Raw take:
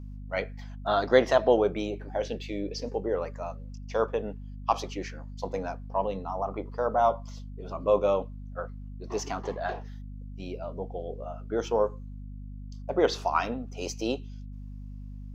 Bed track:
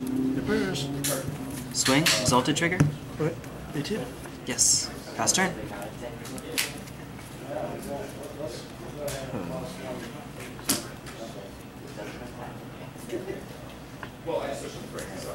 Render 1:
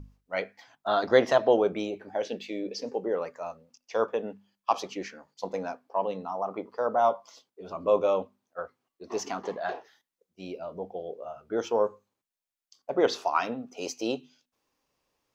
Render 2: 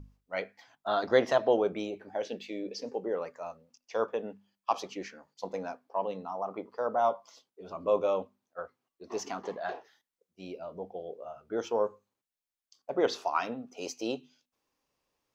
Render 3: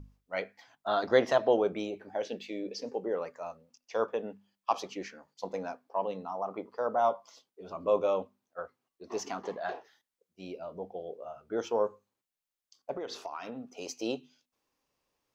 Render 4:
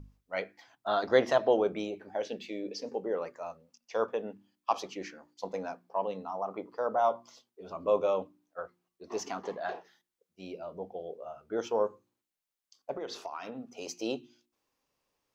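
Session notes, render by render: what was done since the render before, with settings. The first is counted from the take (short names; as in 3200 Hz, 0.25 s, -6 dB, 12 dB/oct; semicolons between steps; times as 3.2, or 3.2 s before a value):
notches 50/100/150/200/250 Hz
gain -3.5 dB
12.93–13.89 compressor, threshold -35 dBFS
de-hum 59.19 Hz, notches 6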